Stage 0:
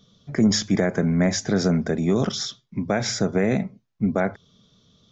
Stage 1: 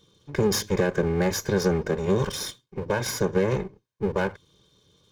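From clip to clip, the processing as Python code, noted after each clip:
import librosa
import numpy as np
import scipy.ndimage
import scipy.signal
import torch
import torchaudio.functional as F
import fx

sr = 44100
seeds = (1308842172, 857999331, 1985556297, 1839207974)

y = fx.lower_of_two(x, sr, delay_ms=1.9)
y = fx.notch_comb(y, sr, f0_hz=670.0)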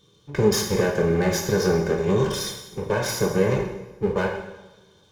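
y = fx.rev_double_slope(x, sr, seeds[0], early_s=0.89, late_s=2.7, knee_db=-23, drr_db=0.5)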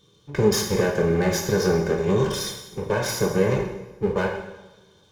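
y = x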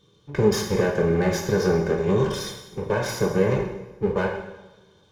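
y = fx.high_shelf(x, sr, hz=4600.0, db=-7.5)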